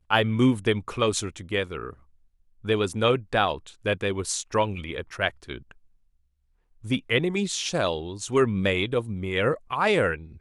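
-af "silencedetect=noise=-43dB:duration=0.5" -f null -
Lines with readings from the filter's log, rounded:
silence_start: 1.93
silence_end: 2.64 | silence_duration: 0.71
silence_start: 5.72
silence_end: 6.84 | silence_duration: 1.12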